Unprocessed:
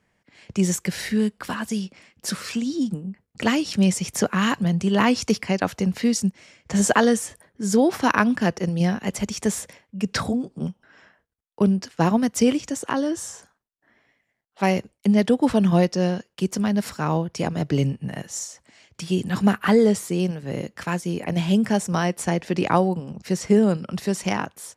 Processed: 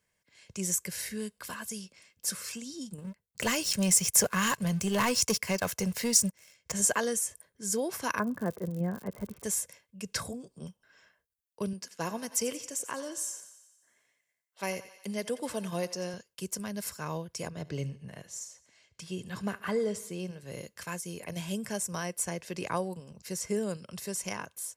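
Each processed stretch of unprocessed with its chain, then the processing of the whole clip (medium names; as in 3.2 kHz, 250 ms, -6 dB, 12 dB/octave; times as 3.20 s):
2.98–6.72 s: peaking EQ 290 Hz -6 dB 0.34 oct + waveshaping leveller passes 2
8.18–9.43 s: low-pass 1.5 kHz 24 dB/octave + peaking EQ 270 Hz +5.5 dB 2.2 oct + crackle 100 per s -33 dBFS
11.73–16.14 s: high-pass 210 Hz 6 dB/octave + thinning echo 89 ms, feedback 61%, high-pass 440 Hz, level -14.5 dB
17.50–20.41 s: low-pass 2.8 kHz 6 dB/octave + feedback delay 72 ms, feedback 53%, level -19.5 dB
whole clip: pre-emphasis filter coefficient 0.8; comb 1.9 ms, depth 39%; dynamic bell 3.8 kHz, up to -6 dB, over -50 dBFS, Q 1.6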